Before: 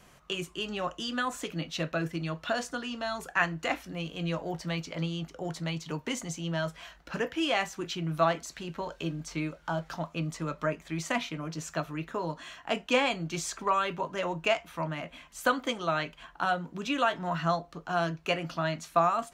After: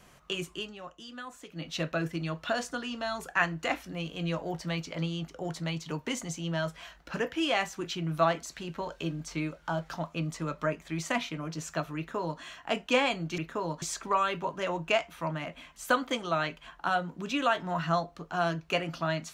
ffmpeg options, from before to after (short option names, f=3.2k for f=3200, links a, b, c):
-filter_complex "[0:a]asplit=5[a][b][c][d][e];[a]atrim=end=0.73,asetpts=PTS-STARTPTS,afade=t=out:st=0.55:d=0.18:silence=0.266073[f];[b]atrim=start=0.73:end=1.52,asetpts=PTS-STARTPTS,volume=-11.5dB[g];[c]atrim=start=1.52:end=13.382,asetpts=PTS-STARTPTS,afade=t=in:d=0.18:silence=0.266073[h];[d]atrim=start=11.968:end=12.412[i];[e]atrim=start=13.378[j];[f][g][h]concat=n=3:v=0:a=1[k];[k][i]acrossfade=d=0.004:c1=hsin:c2=hsin[l];[l][j]acrossfade=d=0.004:c1=hsin:c2=hsin"